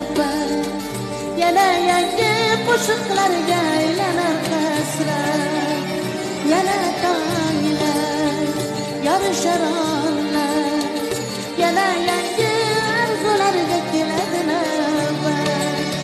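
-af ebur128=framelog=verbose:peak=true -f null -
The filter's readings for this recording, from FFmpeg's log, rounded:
Integrated loudness:
  I:         -19.0 LUFS
  Threshold: -29.0 LUFS
Loudness range:
  LRA:         2.4 LU
  Threshold: -38.9 LUFS
  LRA low:   -19.8 LUFS
  LRA high:  -17.4 LUFS
True peak:
  Peak:       -5.9 dBFS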